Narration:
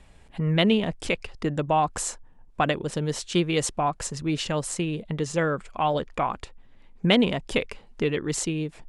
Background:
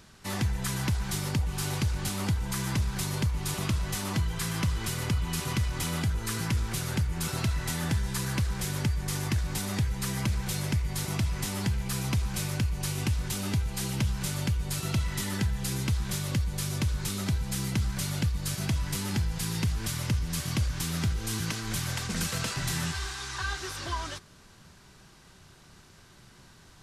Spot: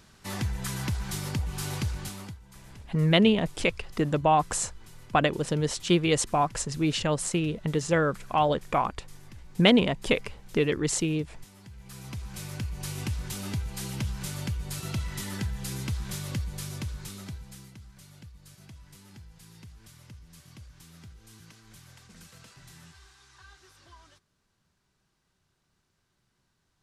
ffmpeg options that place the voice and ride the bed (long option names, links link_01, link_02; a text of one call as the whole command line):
ffmpeg -i stem1.wav -i stem2.wav -filter_complex "[0:a]adelay=2550,volume=0.5dB[link_01];[1:a]volume=15dB,afade=type=out:start_time=1.86:duration=0.53:silence=0.11885,afade=type=in:start_time=11.67:duration=1.27:silence=0.141254,afade=type=out:start_time=16.38:duration=1.37:silence=0.141254[link_02];[link_01][link_02]amix=inputs=2:normalize=0" out.wav